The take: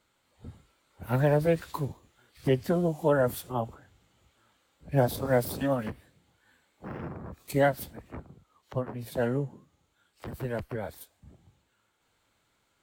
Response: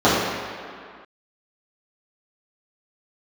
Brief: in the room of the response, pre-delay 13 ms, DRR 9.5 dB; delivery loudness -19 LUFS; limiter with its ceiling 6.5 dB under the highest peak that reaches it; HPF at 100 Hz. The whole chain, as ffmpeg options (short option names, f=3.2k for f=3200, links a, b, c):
-filter_complex "[0:a]highpass=100,alimiter=limit=-18.5dB:level=0:latency=1,asplit=2[a][b];[1:a]atrim=start_sample=2205,adelay=13[c];[b][c]afir=irnorm=-1:irlink=0,volume=-35.5dB[d];[a][d]amix=inputs=2:normalize=0,volume=12.5dB"